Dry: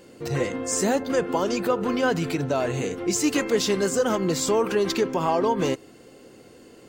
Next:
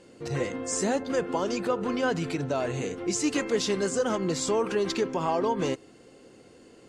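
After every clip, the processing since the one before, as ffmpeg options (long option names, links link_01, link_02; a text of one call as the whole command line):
ffmpeg -i in.wav -af "lowpass=frequency=10000:width=0.5412,lowpass=frequency=10000:width=1.3066,volume=-4dB" out.wav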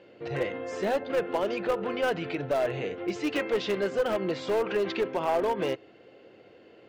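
ffmpeg -i in.wav -af "highpass=110,equalizer=frequency=160:width_type=q:width=4:gain=-7,equalizer=frequency=250:width_type=q:width=4:gain=-8,equalizer=frequency=620:width_type=q:width=4:gain=5,equalizer=frequency=1100:width_type=q:width=4:gain=-4,lowpass=frequency=3100:width=0.5412,lowpass=frequency=3100:width=1.3066,aeval=exprs='clip(val(0),-1,0.0794)':channel_layout=same,crystalizer=i=2:c=0" out.wav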